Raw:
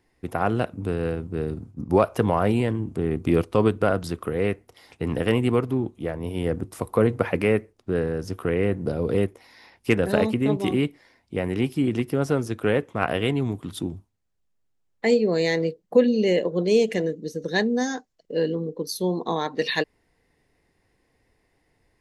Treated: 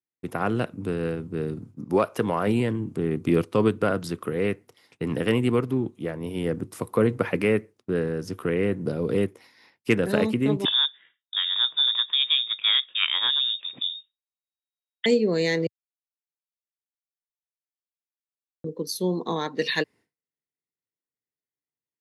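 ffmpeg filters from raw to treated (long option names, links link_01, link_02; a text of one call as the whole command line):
ffmpeg -i in.wav -filter_complex "[0:a]asettb=1/sr,asplit=3[link_01][link_02][link_03];[link_01]atrim=end=1.744[link_04];[link_02]atrim=start=1.74:end=2.47,asetpts=PTS-STARTPTS,afade=type=in:duration=0.004:curve=qsin,afade=type=out:start_time=0.726:duration=0.004:curve=qsin,lowshelf=frequency=190:gain=-7[link_05];[link_03]atrim=start=2.466[link_06];[link_04][link_05]acrossfade=duration=0.004:curve1=hsin:curve2=qsin[link_07];[link_07][link_06]acrossfade=duration=0.004:curve1=qsin:curve2=hsin,asettb=1/sr,asplit=3[link_08][link_09][link_10];[link_08]atrim=end=10.654[link_11];[link_09]atrim=start=10.65:end=15.06,asetpts=PTS-STARTPTS,afade=type=in:duration=0.004:curve=qsin,afade=type=out:start_time=4.406:duration=0.004:curve=qsin,lowpass=frequency=3200:width_type=q:width=0.5098,lowpass=frequency=3200:width_type=q:width=0.6013,lowpass=frequency=3200:width_type=q:width=0.9,lowpass=frequency=3200:width_type=q:width=2.563,afreqshift=-3800[link_12];[link_10]atrim=start=15.056[link_13];[link_11][link_12]acrossfade=duration=0.004:curve1=hsin:curve2=qsin[link_14];[link_14][link_13]acrossfade=duration=0.004:curve1=qsin:curve2=hsin,asplit=3[link_15][link_16][link_17];[link_15]atrim=end=15.67,asetpts=PTS-STARTPTS,afade=type=out:start_time=15.666:duration=0.004:curve=hsin[link_18];[link_16]atrim=start=15.67:end=18.64,asetpts=PTS-STARTPTS,volume=0[link_19];[link_17]atrim=start=18.64,asetpts=PTS-STARTPTS,afade=type=in:duration=0.004:curve=hsin[link_20];[link_18][link_19][link_20]concat=n=3:v=0:a=1,highpass=frequency=110:width=0.5412,highpass=frequency=110:width=1.3066,agate=range=-33dB:threshold=-45dB:ratio=3:detection=peak,equalizer=frequency=720:width_type=o:width=0.74:gain=-5.5" out.wav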